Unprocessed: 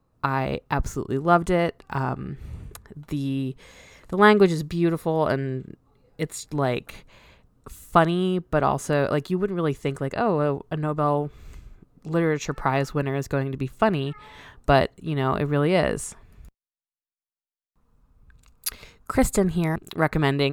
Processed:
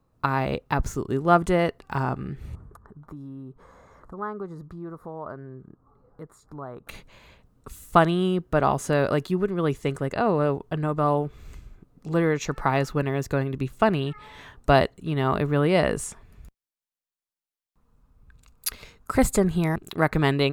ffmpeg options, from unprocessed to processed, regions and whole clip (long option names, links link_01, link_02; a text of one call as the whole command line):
ffmpeg -i in.wav -filter_complex "[0:a]asettb=1/sr,asplit=3[link_01][link_02][link_03];[link_01]atrim=end=2.554[link_04];[link_02]atrim=start=2.55:end=6.87,asetpts=PTS-STARTPTS,afade=type=in:duration=0.004:curve=qsin,afade=type=out:start_time=4.316:duration=0.004:curve=qsin,acompressor=threshold=-47dB:ratio=2:attack=3.2:release=140:knee=1:detection=peak,highshelf=frequency=1800:width_type=q:width=3:gain=-13[link_05];[link_03]atrim=start=6.866[link_06];[link_04][link_05]acrossfade=duration=0.004:curve1=hsin:curve2=qsin[link_07];[link_07][link_06]acrossfade=duration=0.004:curve1=qsin:curve2=hsin" out.wav